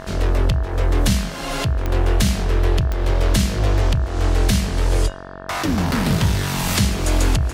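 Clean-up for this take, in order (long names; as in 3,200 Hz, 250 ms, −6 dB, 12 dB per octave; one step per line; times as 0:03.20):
click removal
hum removal 46.3 Hz, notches 39
notch filter 650 Hz, Q 30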